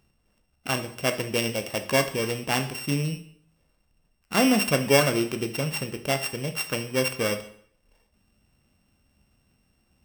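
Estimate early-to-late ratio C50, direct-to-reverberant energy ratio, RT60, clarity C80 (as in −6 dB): 12.0 dB, 7.0 dB, 0.60 s, 15.5 dB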